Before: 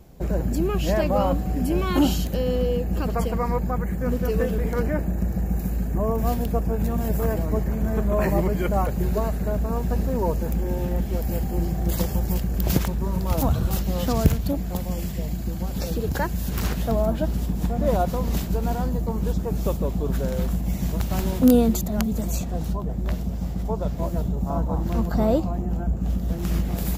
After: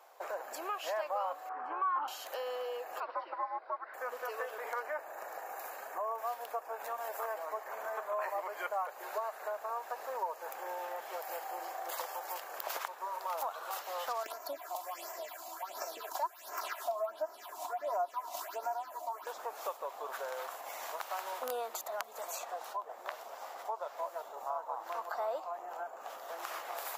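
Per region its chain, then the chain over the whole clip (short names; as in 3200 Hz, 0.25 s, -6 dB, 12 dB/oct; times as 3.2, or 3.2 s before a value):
1.49–2.08 synth low-pass 1200 Hz, resonance Q 2.8 + bell 610 Hz -13.5 dB 0.38 oct + doubler 16 ms -13 dB
3–3.94 frequency shift -140 Hz + tape spacing loss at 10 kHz 20 dB + careless resampling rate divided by 4×, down none, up filtered
14.23–19.27 comb 3 ms, depth 85% + phaser stages 6, 1.4 Hz, lowest notch 110–3600 Hz
whole clip: inverse Chebyshev high-pass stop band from 170 Hz, stop band 60 dB; bell 1100 Hz +12.5 dB 1.6 oct; compressor 2.5:1, threshold -32 dBFS; gain -6 dB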